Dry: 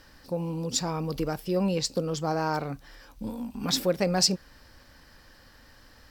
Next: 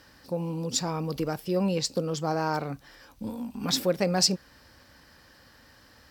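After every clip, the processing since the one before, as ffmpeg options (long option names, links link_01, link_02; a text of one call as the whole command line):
ffmpeg -i in.wav -af "highpass=67" out.wav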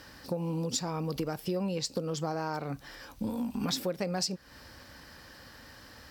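ffmpeg -i in.wav -af "acompressor=threshold=-34dB:ratio=6,volume=4.5dB" out.wav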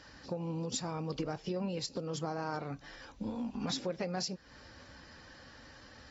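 ffmpeg -i in.wav -af "volume=-4.5dB" -ar 44100 -c:a aac -b:a 24k out.aac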